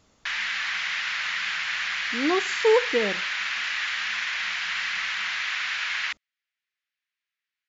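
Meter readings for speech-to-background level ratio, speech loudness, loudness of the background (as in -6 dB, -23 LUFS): 1.0 dB, -25.5 LUFS, -26.5 LUFS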